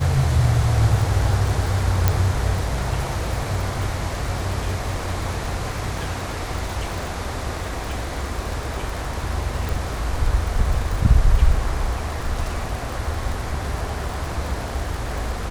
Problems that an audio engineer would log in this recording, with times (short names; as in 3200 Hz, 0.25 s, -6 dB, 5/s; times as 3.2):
crackle 74/s -27 dBFS
2.08 pop -3 dBFS
9.69 pop